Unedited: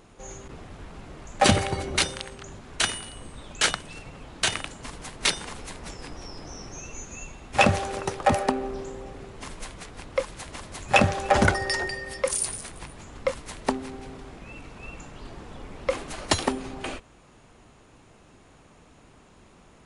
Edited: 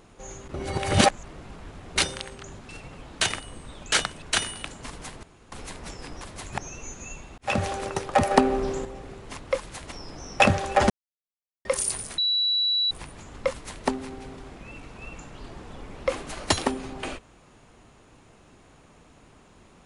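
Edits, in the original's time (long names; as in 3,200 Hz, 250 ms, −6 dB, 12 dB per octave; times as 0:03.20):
0:00.54–0:01.96: reverse
0:02.69–0:03.10: swap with 0:03.91–0:04.63
0:05.23–0:05.52: fill with room tone
0:06.21–0:06.69: swap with 0:10.57–0:10.94
0:07.49–0:07.82: fade in
0:08.42–0:08.96: clip gain +6.5 dB
0:09.48–0:10.02: remove
0:11.44–0:12.19: silence
0:12.72: insert tone 3,930 Hz −20.5 dBFS 0.73 s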